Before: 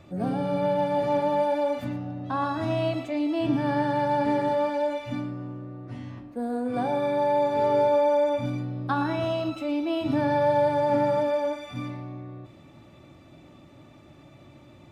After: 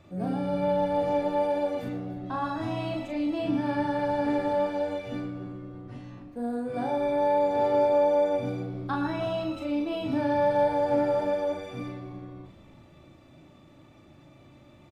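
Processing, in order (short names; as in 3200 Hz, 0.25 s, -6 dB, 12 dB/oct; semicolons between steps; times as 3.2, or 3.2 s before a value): doubler 38 ms -4 dB; frequency-shifting echo 0.297 s, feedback 50%, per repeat -100 Hz, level -17 dB; gain -4.5 dB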